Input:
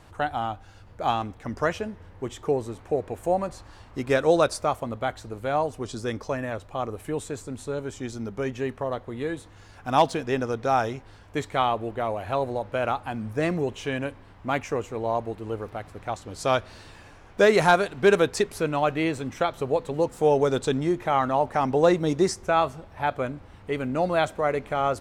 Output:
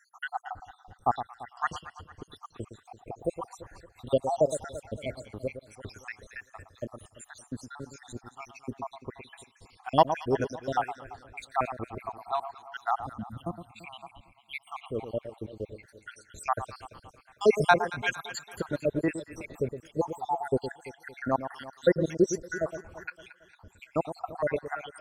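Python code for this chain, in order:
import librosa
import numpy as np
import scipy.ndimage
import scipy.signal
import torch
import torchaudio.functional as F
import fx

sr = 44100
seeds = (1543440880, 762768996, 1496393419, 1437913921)

y = fx.spec_dropout(x, sr, seeds[0], share_pct=81)
y = fx.fixed_phaser(y, sr, hz=1600.0, stages=6, at=(13.16, 14.55))
y = fx.echo_alternate(y, sr, ms=113, hz=1200.0, feedback_pct=66, wet_db=-10.0)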